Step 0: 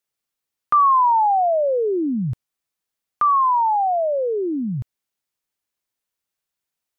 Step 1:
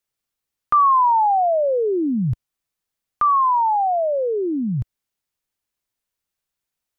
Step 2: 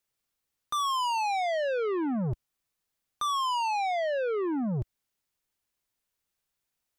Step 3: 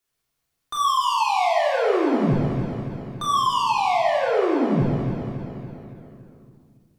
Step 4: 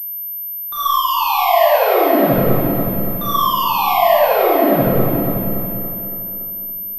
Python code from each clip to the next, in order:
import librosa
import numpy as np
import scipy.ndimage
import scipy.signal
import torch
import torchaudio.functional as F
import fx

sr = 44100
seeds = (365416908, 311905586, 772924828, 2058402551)

y1 = fx.low_shelf(x, sr, hz=100.0, db=9.0)
y2 = 10.0 ** (-27.5 / 20.0) * np.tanh(y1 / 10.0 ** (-27.5 / 20.0))
y3 = fx.echo_feedback(y2, sr, ms=282, feedback_pct=58, wet_db=-9.5)
y3 = fx.room_shoebox(y3, sr, seeds[0], volume_m3=1000.0, walls='mixed', distance_m=3.3)
y3 = fx.end_taper(y3, sr, db_per_s=200.0)
y4 = y3 + 10.0 ** (-5.5 / 20.0) * np.pad(y3, (int(493 * sr / 1000.0), 0))[:len(y3)]
y4 = fx.rev_freeverb(y4, sr, rt60_s=0.4, hf_ratio=0.4, predelay_ms=20, drr_db=-5.0)
y4 = fx.pwm(y4, sr, carrier_hz=13000.0)
y4 = y4 * 10.0 ** (-1.0 / 20.0)